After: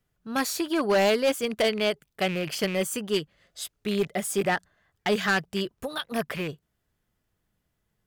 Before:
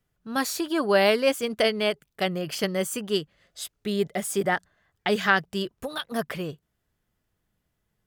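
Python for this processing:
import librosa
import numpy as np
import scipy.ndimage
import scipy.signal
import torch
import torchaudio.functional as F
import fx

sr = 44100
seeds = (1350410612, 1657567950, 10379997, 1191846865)

y = fx.rattle_buzz(x, sr, strikes_db=-34.0, level_db=-25.0)
y = np.clip(10.0 ** (17.5 / 20.0) * y, -1.0, 1.0) / 10.0 ** (17.5 / 20.0)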